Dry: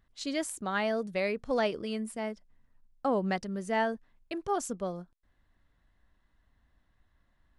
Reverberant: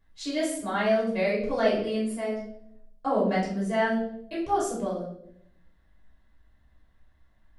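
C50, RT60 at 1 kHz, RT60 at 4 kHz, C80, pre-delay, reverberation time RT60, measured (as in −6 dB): 4.0 dB, 0.55 s, 0.55 s, 8.0 dB, 3 ms, 0.70 s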